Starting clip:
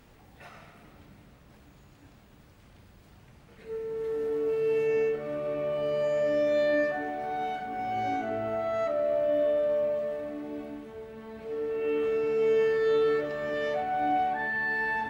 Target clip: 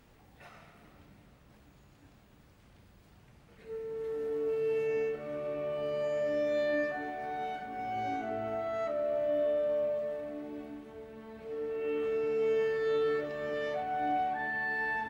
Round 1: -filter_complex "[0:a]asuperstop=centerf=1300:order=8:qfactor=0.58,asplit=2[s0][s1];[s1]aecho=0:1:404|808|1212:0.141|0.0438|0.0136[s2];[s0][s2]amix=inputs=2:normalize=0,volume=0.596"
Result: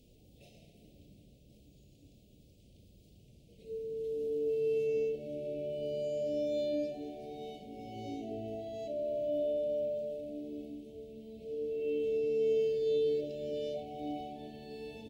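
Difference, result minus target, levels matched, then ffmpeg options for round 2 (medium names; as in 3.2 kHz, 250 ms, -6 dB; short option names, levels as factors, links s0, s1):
1 kHz band -11.5 dB
-filter_complex "[0:a]asplit=2[s0][s1];[s1]aecho=0:1:404|808|1212:0.141|0.0438|0.0136[s2];[s0][s2]amix=inputs=2:normalize=0,volume=0.596"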